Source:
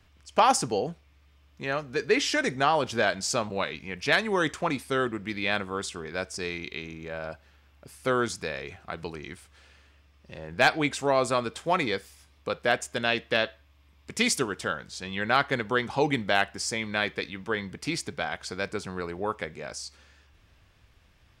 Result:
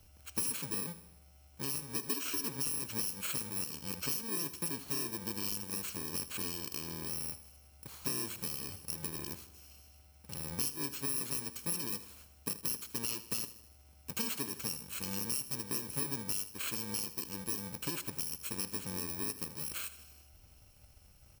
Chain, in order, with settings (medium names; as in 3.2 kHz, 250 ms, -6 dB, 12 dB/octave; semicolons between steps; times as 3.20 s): bit-reversed sample order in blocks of 64 samples; compression 4:1, threshold -35 dBFS, peak gain reduction 16.5 dB; feedback delay 79 ms, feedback 56%, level -15 dB